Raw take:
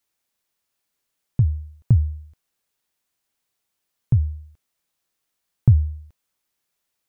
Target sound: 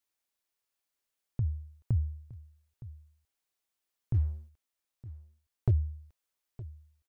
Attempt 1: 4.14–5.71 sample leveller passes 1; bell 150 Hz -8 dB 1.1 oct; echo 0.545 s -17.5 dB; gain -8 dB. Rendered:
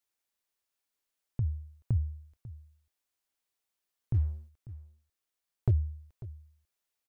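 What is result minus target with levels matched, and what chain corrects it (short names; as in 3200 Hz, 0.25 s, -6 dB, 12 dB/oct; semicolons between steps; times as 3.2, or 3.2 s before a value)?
echo 0.37 s early
4.14–5.71 sample leveller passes 1; bell 150 Hz -8 dB 1.1 oct; echo 0.915 s -17.5 dB; gain -8 dB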